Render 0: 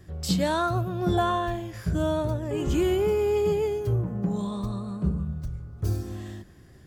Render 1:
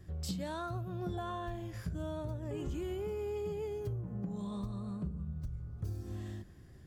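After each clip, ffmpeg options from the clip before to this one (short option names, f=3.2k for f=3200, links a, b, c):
-af "lowshelf=f=180:g=6,acompressor=threshold=-28dB:ratio=6,volume=-7.5dB"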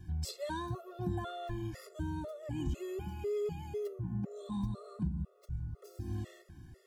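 -af "afftfilt=real='re*gt(sin(2*PI*2*pts/sr)*(1-2*mod(floor(b*sr/1024/360),2)),0)':imag='im*gt(sin(2*PI*2*pts/sr)*(1-2*mod(floor(b*sr/1024/360),2)),0)':win_size=1024:overlap=0.75,volume=4dB"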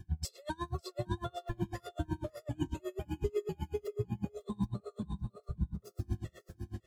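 -af "aecho=1:1:555|1110|1665:0.596|0.107|0.0193,aeval=exprs='val(0)*pow(10,-31*(0.5-0.5*cos(2*PI*8*n/s))/20)':c=same,volume=5.5dB"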